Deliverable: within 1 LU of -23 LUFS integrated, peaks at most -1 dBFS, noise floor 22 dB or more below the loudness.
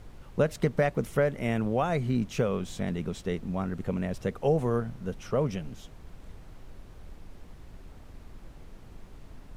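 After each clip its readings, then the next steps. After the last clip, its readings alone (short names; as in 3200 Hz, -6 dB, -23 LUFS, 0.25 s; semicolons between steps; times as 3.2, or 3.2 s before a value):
noise floor -49 dBFS; noise floor target -52 dBFS; loudness -29.5 LUFS; peak -13.0 dBFS; loudness target -23.0 LUFS
-> noise print and reduce 6 dB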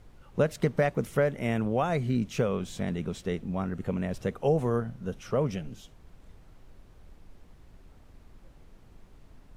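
noise floor -55 dBFS; loudness -29.5 LUFS; peak -13.0 dBFS; loudness target -23.0 LUFS
-> gain +6.5 dB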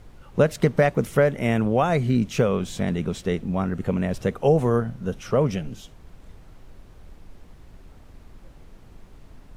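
loudness -23.0 LUFS; peak -6.5 dBFS; noise floor -49 dBFS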